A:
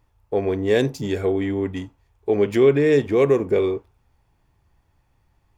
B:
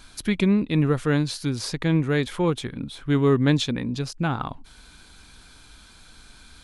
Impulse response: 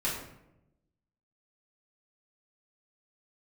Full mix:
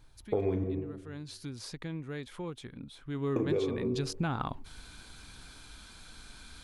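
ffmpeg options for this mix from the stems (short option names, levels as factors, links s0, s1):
-filter_complex "[0:a]tiltshelf=f=720:g=3.5,flanger=delay=5.5:depth=8.4:regen=64:speed=0.57:shape=triangular,volume=1.26,asplit=3[s0][s1][s2];[s0]atrim=end=0.64,asetpts=PTS-STARTPTS,afade=t=out:st=0.636:d=0.004:c=hsin[s3];[s1]atrim=start=0.64:end=3.36,asetpts=PTS-STARTPTS,volume=0[s4];[s2]atrim=start=3.36,asetpts=PTS-STARTPTS,afade=t=in:d=0.004:c=hsin[s5];[s3][s4][s5]concat=n=3:v=0:a=1,asplit=2[s6][s7];[s7]volume=0.266[s8];[1:a]acompressor=threshold=0.0447:ratio=2,volume=0.841,afade=t=in:st=1.07:d=0.22:silence=0.398107,afade=t=in:st=3.1:d=0.43:silence=0.298538[s9];[2:a]atrim=start_sample=2205[s10];[s8][s10]afir=irnorm=-1:irlink=0[s11];[s6][s9][s11]amix=inputs=3:normalize=0,acompressor=threshold=0.0501:ratio=16"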